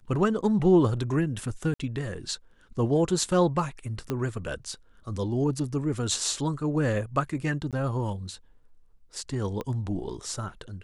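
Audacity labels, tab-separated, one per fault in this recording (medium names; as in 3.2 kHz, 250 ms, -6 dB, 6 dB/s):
1.740000	1.790000	dropout 55 ms
4.100000	4.100000	pop -16 dBFS
7.710000	7.730000	dropout 17 ms
9.610000	9.610000	pop -20 dBFS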